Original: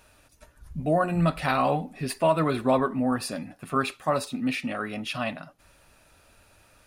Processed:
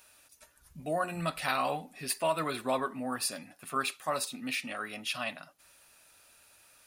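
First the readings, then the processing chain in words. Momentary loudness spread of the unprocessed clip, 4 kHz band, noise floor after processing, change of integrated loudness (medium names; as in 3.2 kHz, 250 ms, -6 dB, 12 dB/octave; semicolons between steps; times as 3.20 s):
10 LU, 0.0 dB, -64 dBFS, -7.0 dB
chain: tilt EQ +3 dB/octave; trim -6 dB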